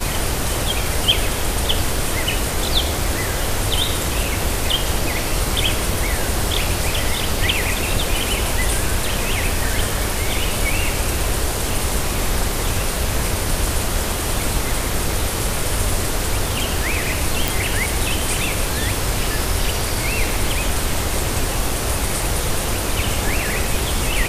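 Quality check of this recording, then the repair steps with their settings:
0:17.48: click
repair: click removal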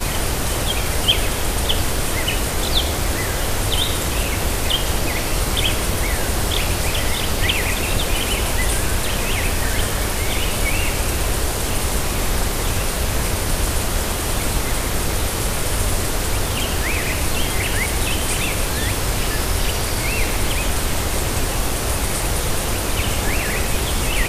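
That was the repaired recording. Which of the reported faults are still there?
none of them is left

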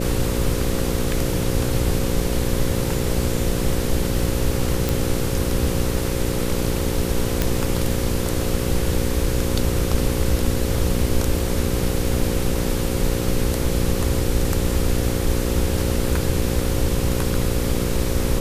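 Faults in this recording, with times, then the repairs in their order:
mains buzz 60 Hz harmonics 9 −25 dBFS
0:04.89: click
0:07.42: click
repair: click removal
hum removal 60 Hz, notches 9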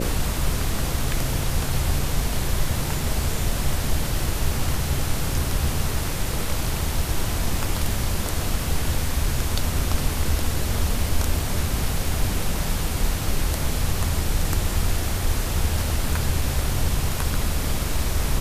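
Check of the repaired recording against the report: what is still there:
none of them is left

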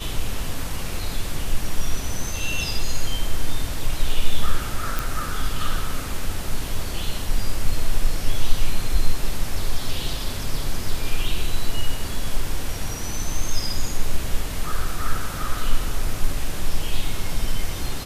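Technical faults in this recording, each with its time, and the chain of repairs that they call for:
0:04.99: click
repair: click removal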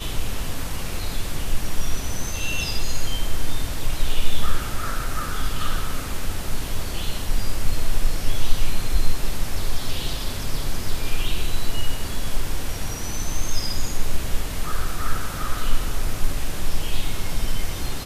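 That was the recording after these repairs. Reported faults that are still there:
none of them is left

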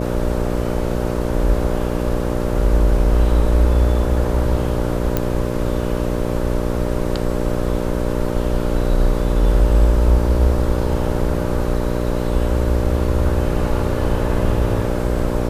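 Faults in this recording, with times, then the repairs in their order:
mains buzz 60 Hz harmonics 10 −22 dBFS
0:05.17: click −5 dBFS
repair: click removal
hum removal 60 Hz, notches 10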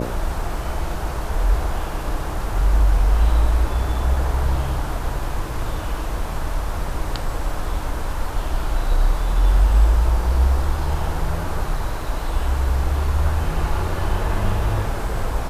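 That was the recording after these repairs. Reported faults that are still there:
none of them is left

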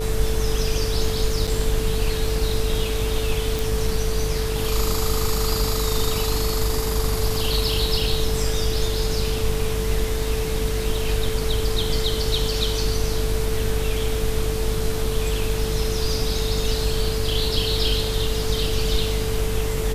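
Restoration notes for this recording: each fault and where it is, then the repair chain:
mains buzz 50 Hz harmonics 37 −26 dBFS
whistle 440 Hz −27 dBFS
0:01.47–0:01.48: drop-out 5.9 ms
0:03.59: click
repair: click removal
notch filter 440 Hz, Q 30
hum removal 50 Hz, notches 37
repair the gap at 0:01.47, 5.9 ms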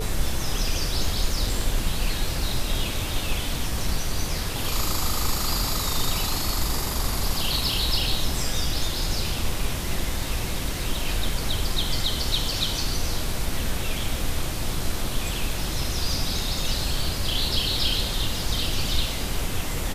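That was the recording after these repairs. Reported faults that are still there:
none of them is left

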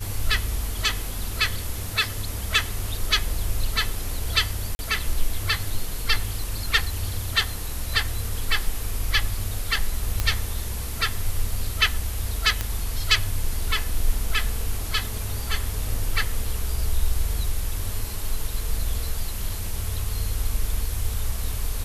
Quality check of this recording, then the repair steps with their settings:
0:04.75–0:04.79: drop-out 40 ms
0:10.20: click −8 dBFS
0:12.61: click −9 dBFS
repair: click removal
repair the gap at 0:04.75, 40 ms

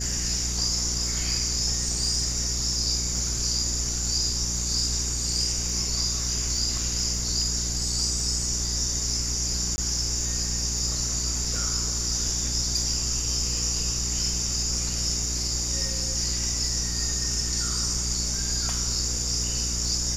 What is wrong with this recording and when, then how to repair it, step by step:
surface crackle 34 per second −34 dBFS
mains hum 60 Hz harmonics 7 −32 dBFS
0:09.76–0:09.78: drop-out 20 ms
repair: click removal
hum removal 60 Hz, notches 7
repair the gap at 0:09.76, 20 ms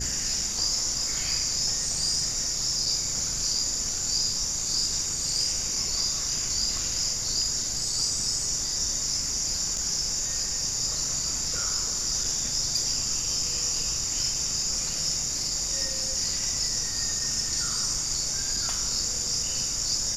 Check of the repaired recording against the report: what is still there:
none of them is left

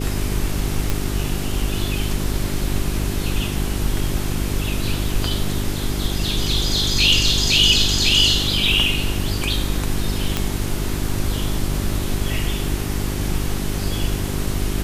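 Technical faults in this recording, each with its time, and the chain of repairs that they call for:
mains hum 50 Hz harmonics 8 −25 dBFS
0:00.90: click −6 dBFS
0:10.37: click −5 dBFS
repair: click removal
hum removal 50 Hz, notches 8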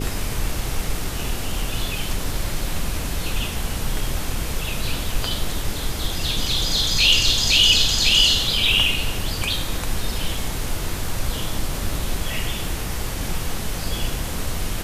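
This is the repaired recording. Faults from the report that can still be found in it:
none of them is left

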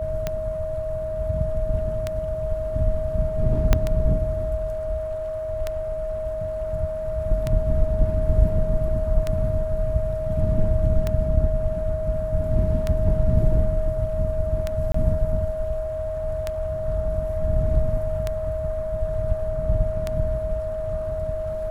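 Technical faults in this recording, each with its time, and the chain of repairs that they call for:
scratch tick 33 1/3 rpm −11 dBFS
whistle 630 Hz −26 dBFS
0:03.73: click −4 dBFS
0:14.92–0:14.94: drop-out 24 ms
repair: click removal
notch filter 630 Hz, Q 30
repair the gap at 0:14.92, 24 ms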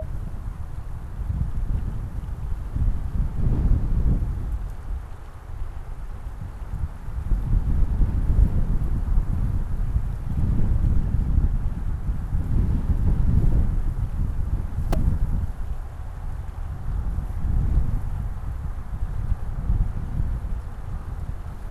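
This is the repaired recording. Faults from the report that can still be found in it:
0:03.73: click

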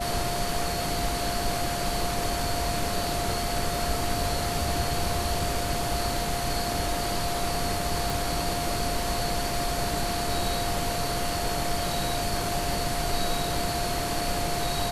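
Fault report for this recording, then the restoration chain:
whistle 700 Hz −31 dBFS
0:08.10: click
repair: click removal
notch filter 700 Hz, Q 30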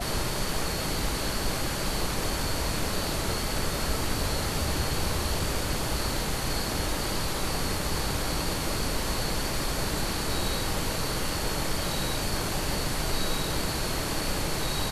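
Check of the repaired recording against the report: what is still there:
none of them is left

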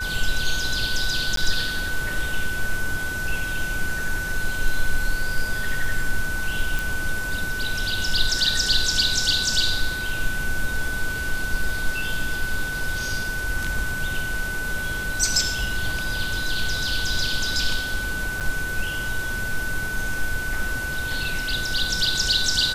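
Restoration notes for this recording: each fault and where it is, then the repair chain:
whistle 1,500 Hz −27 dBFS
0:01.36–0:01.37: drop-out 13 ms
0:06.79: click
0:18.40–0:18.41: drop-out 7.7 ms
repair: click removal
notch filter 1,500 Hz, Q 30
repair the gap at 0:01.36, 13 ms
repair the gap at 0:18.40, 7.7 ms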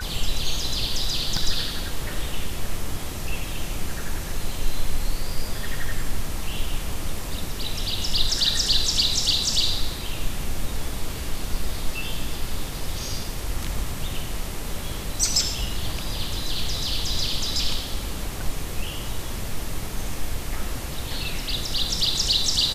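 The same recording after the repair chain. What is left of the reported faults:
none of them is left

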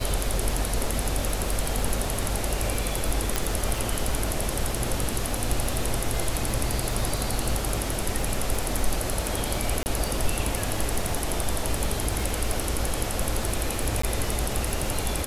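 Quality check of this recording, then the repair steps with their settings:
surface crackle 49 per second −29 dBFS
0:03.36: click
0:09.83–0:09.86: drop-out 29 ms
0:14.02–0:14.03: drop-out 14 ms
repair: click removal
repair the gap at 0:09.83, 29 ms
repair the gap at 0:14.02, 14 ms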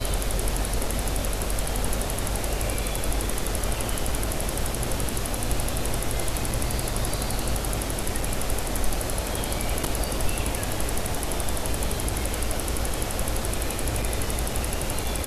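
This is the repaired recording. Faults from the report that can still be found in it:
none of them is left

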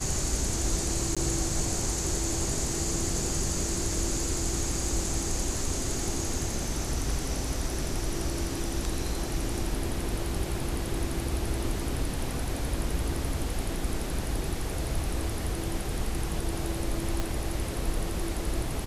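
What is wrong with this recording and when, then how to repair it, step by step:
0:01.15–0:01.17: drop-out 16 ms
0:17.20: click −16 dBFS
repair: click removal
repair the gap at 0:01.15, 16 ms

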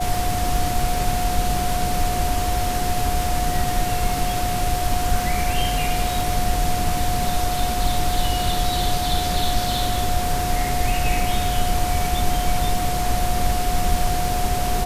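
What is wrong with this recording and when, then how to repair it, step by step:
surface crackle 54 per second −28 dBFS
whistle 720 Hz −24 dBFS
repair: click removal
notch filter 720 Hz, Q 30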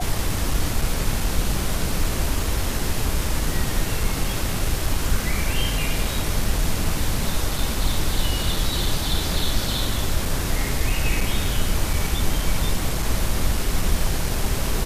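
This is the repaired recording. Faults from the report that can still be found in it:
none of them is left

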